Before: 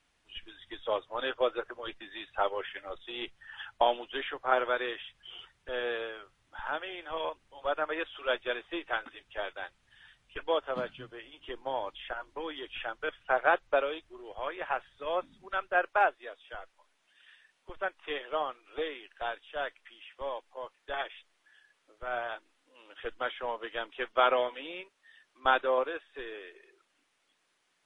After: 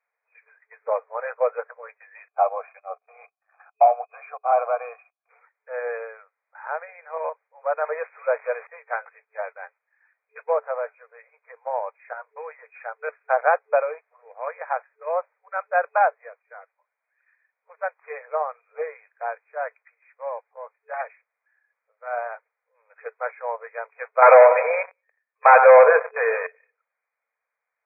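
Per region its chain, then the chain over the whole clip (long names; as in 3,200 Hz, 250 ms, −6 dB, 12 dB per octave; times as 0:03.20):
0:02.28–0:05.29: leveller curve on the samples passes 3 + formant filter a
0:07.83–0:08.67: spike at every zero crossing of −22.5 dBFS + spectral tilt −2.5 dB per octave
0:24.22–0:26.47: repeating echo 94 ms, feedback 42%, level −15.5 dB + leveller curve on the samples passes 5
whole clip: noise gate −53 dBFS, range −6 dB; brick-wall band-pass 440–2,500 Hz; dynamic equaliser 680 Hz, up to +8 dB, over −41 dBFS, Q 0.7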